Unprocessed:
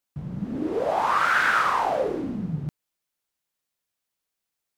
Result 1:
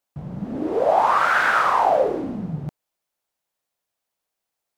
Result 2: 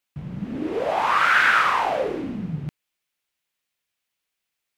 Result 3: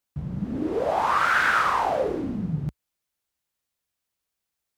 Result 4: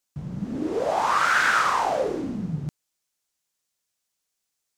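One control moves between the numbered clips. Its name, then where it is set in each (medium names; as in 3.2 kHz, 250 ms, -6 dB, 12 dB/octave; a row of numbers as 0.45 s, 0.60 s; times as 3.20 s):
peaking EQ, frequency: 690 Hz, 2.5 kHz, 64 Hz, 6.7 kHz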